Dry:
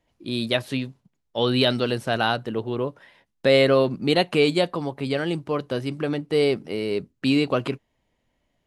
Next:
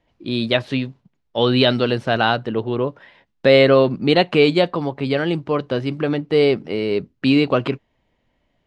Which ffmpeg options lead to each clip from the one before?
-af "lowpass=4.3k,volume=5dB"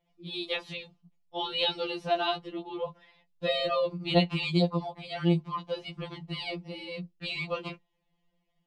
-af "equalizer=f=100:t=o:w=0.67:g=6,equalizer=f=400:t=o:w=0.67:g=-9,equalizer=f=1.6k:t=o:w=0.67:g=-11,afftfilt=real='re*2.83*eq(mod(b,8),0)':imag='im*2.83*eq(mod(b,8),0)':win_size=2048:overlap=0.75,volume=-5dB"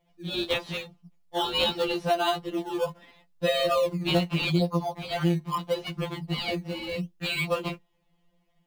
-filter_complex "[0:a]asplit=2[a][b];[b]acrusher=samples=15:mix=1:aa=0.000001:lfo=1:lforange=15:lforate=0.78,volume=-8.5dB[c];[a][c]amix=inputs=2:normalize=0,acompressor=threshold=-25dB:ratio=6,volume=4.5dB"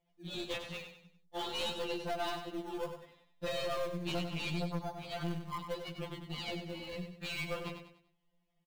-af "aeval=exprs='(tanh(15.8*val(0)+0.5)-tanh(0.5))/15.8':c=same,aecho=1:1:97|194|291|388:0.398|0.147|0.0545|0.0202,volume=-8dB"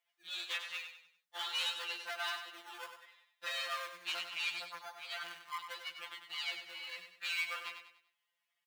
-af "highpass=f=1.5k:t=q:w=1.6,volume=1.5dB"

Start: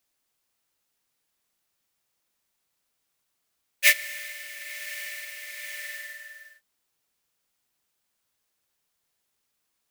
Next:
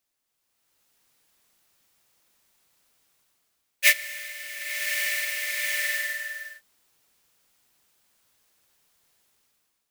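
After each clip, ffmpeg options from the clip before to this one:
-af "dynaudnorm=f=270:g=5:m=13dB,volume=-3dB"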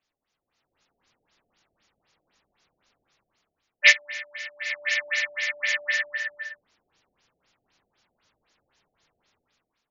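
-af "afftfilt=real='re*lt(b*sr/1024,740*pow(7300/740,0.5+0.5*sin(2*PI*3.9*pts/sr)))':imag='im*lt(b*sr/1024,740*pow(7300/740,0.5+0.5*sin(2*PI*3.9*pts/sr)))':win_size=1024:overlap=0.75,volume=4.5dB"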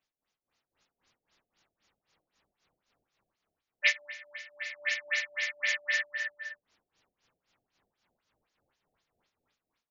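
-af "tremolo=f=3.7:d=0.73,volume=-3dB"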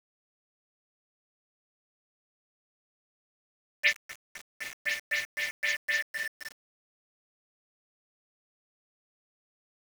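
-af "aeval=exprs='val(0)*gte(abs(val(0)),0.0141)':c=same"

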